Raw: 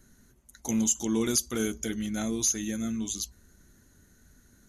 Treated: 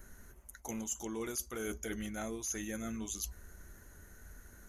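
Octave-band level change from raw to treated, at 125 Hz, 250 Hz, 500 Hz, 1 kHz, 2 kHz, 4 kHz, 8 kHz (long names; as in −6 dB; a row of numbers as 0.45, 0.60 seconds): −9.5, −12.0, −7.5, −4.0, −4.5, −13.0, −11.0 decibels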